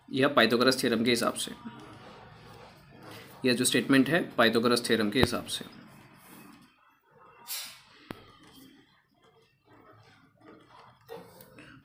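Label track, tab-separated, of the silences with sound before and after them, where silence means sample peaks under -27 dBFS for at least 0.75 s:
1.480000	3.440000	silence
5.610000	7.510000	silence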